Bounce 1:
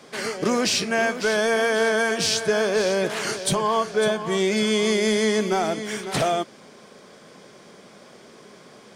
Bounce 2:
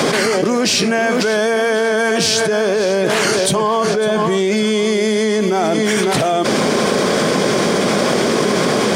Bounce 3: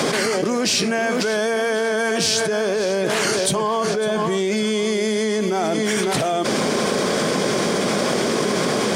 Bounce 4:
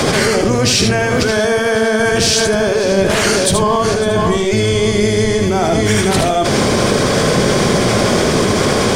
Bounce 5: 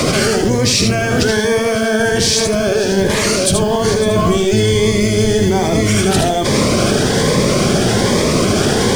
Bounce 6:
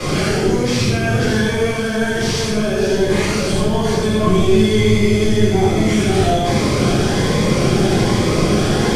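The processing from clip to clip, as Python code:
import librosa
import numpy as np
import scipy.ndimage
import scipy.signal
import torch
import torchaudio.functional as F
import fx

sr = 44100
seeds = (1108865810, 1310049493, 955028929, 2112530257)

y1 = scipy.signal.sosfilt(scipy.signal.butter(2, 46.0, 'highpass', fs=sr, output='sos'), x)
y1 = fx.peak_eq(y1, sr, hz=310.0, db=3.5, octaves=2.2)
y1 = fx.env_flatten(y1, sr, amount_pct=100)
y1 = F.gain(torch.from_numpy(y1), -1.0).numpy()
y2 = fx.peak_eq(y1, sr, hz=8800.0, db=2.5, octaves=1.7)
y2 = F.gain(torch.from_numpy(y2), -5.0).numpy()
y3 = fx.octave_divider(y2, sr, octaves=1, level_db=-1.0)
y3 = y3 + 10.0 ** (-5.0 / 20.0) * np.pad(y3, (int(77 * sr / 1000.0), 0))[:len(y3)]
y3 = F.gain(torch.from_numpy(y3), 5.0).numpy()
y4 = fx.mod_noise(y3, sr, seeds[0], snr_db=32)
y4 = fx.rider(y4, sr, range_db=10, speed_s=0.5)
y4 = fx.notch_cascade(y4, sr, direction='rising', hz=1.2)
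y4 = F.gain(torch.from_numpy(y4), 1.0).numpy()
y5 = fx.cvsd(y4, sr, bps=64000)
y5 = fx.room_shoebox(y5, sr, seeds[1], volume_m3=340.0, walls='mixed', distance_m=3.9)
y5 = F.gain(torch.from_numpy(y5), -13.0).numpy()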